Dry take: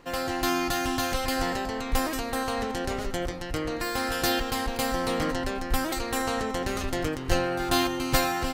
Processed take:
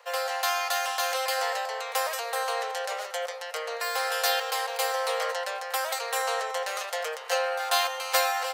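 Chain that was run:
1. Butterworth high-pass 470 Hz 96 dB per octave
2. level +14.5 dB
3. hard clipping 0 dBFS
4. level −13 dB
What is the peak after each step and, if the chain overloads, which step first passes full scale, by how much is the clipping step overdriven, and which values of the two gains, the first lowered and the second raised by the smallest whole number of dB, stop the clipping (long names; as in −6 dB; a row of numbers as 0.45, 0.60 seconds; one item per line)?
−10.5, +4.0, 0.0, −13.0 dBFS
step 2, 4.0 dB
step 2 +10.5 dB, step 4 −9 dB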